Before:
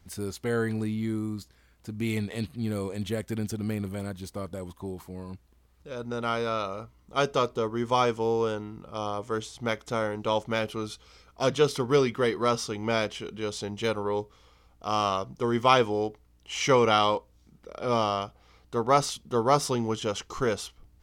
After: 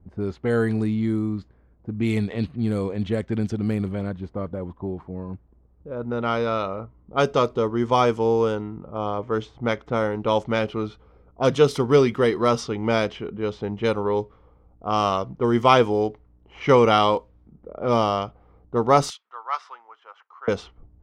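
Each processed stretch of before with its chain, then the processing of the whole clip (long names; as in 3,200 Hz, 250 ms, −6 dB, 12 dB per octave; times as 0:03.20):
0:19.10–0:20.48: high-pass filter 1,200 Hz 24 dB per octave + spectral tilt −2 dB per octave
whole clip: spectral tilt −1.5 dB per octave; low-pass that shuts in the quiet parts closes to 590 Hz, open at −20 dBFS; low-shelf EQ 77 Hz −8.5 dB; level +4.5 dB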